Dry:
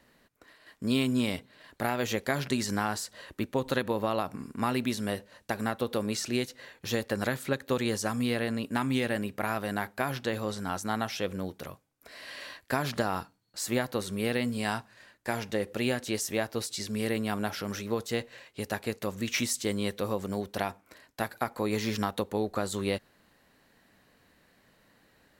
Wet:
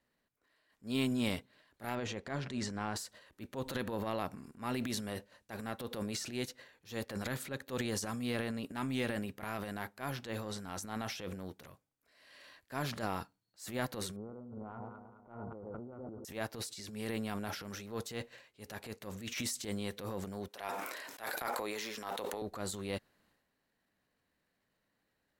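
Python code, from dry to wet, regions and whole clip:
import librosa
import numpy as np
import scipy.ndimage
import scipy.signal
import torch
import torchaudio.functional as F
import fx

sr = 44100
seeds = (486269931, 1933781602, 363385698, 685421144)

y = fx.chain(x, sr, fx.lowpass(hz=8900.0, slope=24),
    fx.high_shelf(hz=3400.0, db=-10.0), at=(1.95, 2.96))
y = fx.chain(y, sr, fx.echo_alternate(ms=106, hz=870.0, feedback_pct=74, wet_db=-11.5),
    fx.over_compress(threshold_db=-35.0, ratio=-1.0),
    fx.brickwall_lowpass(high_hz=1500.0), at=(14.16, 16.25))
y = fx.chain(y, sr, fx.highpass(hz=440.0, slope=12),
    fx.notch(hz=4500.0, q=26.0),
    fx.sustainer(db_per_s=21.0), at=(20.48, 22.42))
y = fx.transient(y, sr, attack_db=-9, sustain_db=8)
y = fx.upward_expand(y, sr, threshold_db=-50.0, expansion=1.5)
y = F.gain(torch.from_numpy(y), -5.0).numpy()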